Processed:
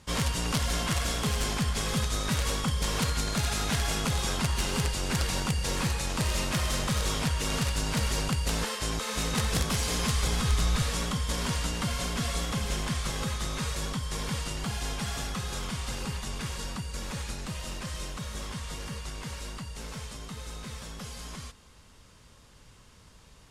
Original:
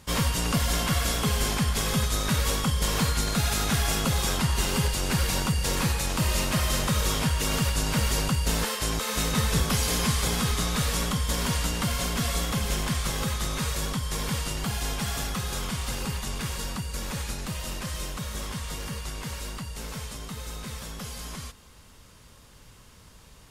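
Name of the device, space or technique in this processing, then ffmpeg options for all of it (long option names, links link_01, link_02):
overflowing digital effects unit: -filter_complex "[0:a]aeval=exprs='(mod(6.31*val(0)+1,2)-1)/6.31':channel_layout=same,lowpass=9800,asettb=1/sr,asplit=3[link_01][link_02][link_03];[link_01]atrim=end=9.924[link_04];[link_02]atrim=start=9.92:end=10.83,asetpts=PTS-STARTPTS,afade=type=in:duration=0.004:curve=qsin,afade=type=out:start_time=0.906:duration=0.004:curve=qsin,asubboost=boost=8.5:cutoff=120[link_05];[link_03]atrim=start=10.826[link_06];[link_04][link_05]acrossfade=duration=0.004:curve1=hsin:curve2=qsin[link_07];[link_07][link_06]acrossfade=duration=0.004:curve1=qsin:curve2=hsin,volume=-3dB"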